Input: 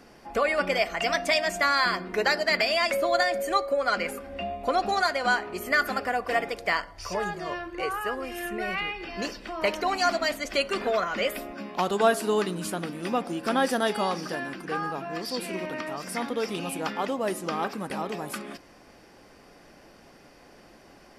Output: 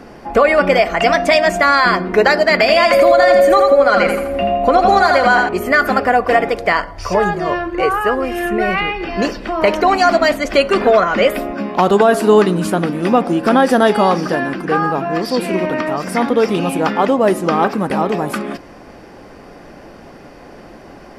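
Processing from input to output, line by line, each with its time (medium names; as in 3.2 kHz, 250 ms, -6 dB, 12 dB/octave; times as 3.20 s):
2.60–5.49 s: feedback delay 83 ms, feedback 40%, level -6 dB
whole clip: treble shelf 2.3 kHz -11 dB; loudness maximiser +17 dB; trim -1 dB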